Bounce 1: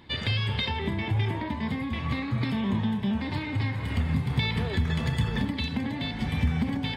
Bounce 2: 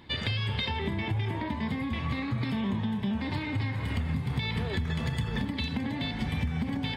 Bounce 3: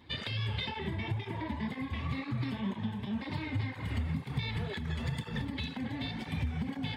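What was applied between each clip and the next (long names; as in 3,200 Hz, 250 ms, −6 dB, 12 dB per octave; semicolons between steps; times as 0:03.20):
downward compressor, threshold −26 dBFS, peak gain reduction 7 dB
through-zero flanger with one copy inverted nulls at 2 Hz, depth 6.6 ms; level −2 dB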